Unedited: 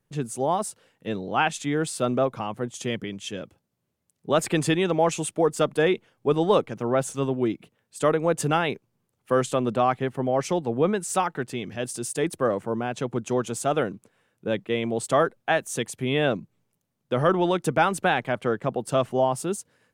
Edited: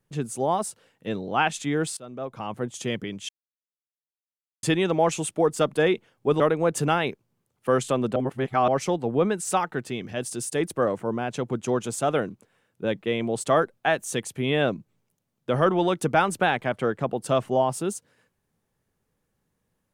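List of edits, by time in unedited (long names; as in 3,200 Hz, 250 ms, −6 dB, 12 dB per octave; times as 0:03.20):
0:01.97–0:02.53: fade in quadratic, from −18.5 dB
0:03.29–0:04.63: silence
0:06.40–0:08.03: remove
0:09.79–0:10.31: reverse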